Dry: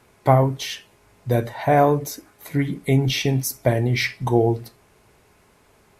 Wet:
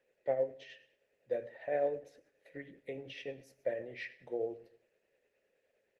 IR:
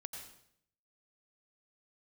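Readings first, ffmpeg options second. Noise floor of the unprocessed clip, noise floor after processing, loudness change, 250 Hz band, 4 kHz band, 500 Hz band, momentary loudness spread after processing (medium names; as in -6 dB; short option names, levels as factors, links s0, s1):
-58 dBFS, -80 dBFS, -17.5 dB, -26.0 dB, -25.5 dB, -13.5 dB, 17 LU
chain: -filter_complex "[0:a]bandreject=f=60:t=h:w=6,bandreject=f=120:t=h:w=6,asplit=2[s0][s1];[s1]equalizer=f=1100:w=3.3:g=-6[s2];[1:a]atrim=start_sample=2205[s3];[s2][s3]afir=irnorm=-1:irlink=0,volume=0.237[s4];[s0][s4]amix=inputs=2:normalize=0,acrossover=split=230|3000[s5][s6][s7];[s5]acompressor=threshold=0.126:ratio=4[s8];[s8][s6][s7]amix=inputs=3:normalize=0,asplit=3[s9][s10][s11];[s9]bandpass=f=530:t=q:w=8,volume=1[s12];[s10]bandpass=f=1840:t=q:w=8,volume=0.501[s13];[s11]bandpass=f=2480:t=q:w=8,volume=0.355[s14];[s12][s13][s14]amix=inputs=3:normalize=0,aecho=1:1:139|278:0.0668|0.0114,tremolo=f=9.7:d=0.4,volume=0.501" -ar 48000 -c:a libopus -b:a 20k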